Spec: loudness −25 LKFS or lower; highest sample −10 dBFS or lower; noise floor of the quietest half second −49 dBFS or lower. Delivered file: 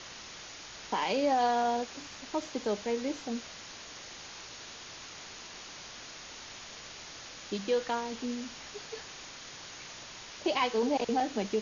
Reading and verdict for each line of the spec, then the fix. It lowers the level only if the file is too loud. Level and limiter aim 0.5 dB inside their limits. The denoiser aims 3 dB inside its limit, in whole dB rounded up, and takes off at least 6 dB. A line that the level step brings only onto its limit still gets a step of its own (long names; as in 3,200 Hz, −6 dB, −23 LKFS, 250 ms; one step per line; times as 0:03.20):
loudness −35.0 LKFS: in spec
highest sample −18.0 dBFS: in spec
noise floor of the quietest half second −47 dBFS: out of spec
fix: broadband denoise 6 dB, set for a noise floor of −47 dBFS